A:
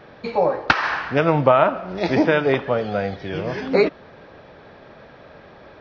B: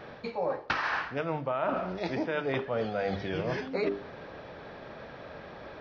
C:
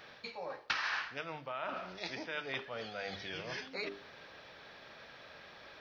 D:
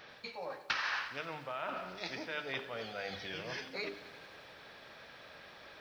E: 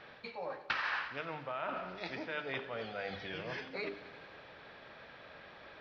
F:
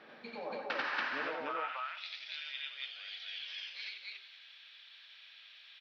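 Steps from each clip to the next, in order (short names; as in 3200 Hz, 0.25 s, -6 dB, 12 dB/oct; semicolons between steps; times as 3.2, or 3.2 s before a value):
notches 50/100/150/200/250/300/350/400 Hz; reverse; compressor 12:1, threshold -27 dBFS, peak gain reduction 18.5 dB; reverse
tilt shelf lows -10 dB, about 1500 Hz; gain -5.5 dB
lo-fi delay 89 ms, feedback 80%, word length 10-bit, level -15 dB
air absorption 220 m; gain +2 dB
high-pass sweep 240 Hz -> 3200 Hz, 1.15–1.76; on a send: loudspeakers at several distances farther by 31 m -1 dB, 58 m -12 dB, 97 m 0 dB; on the sum: gain -4 dB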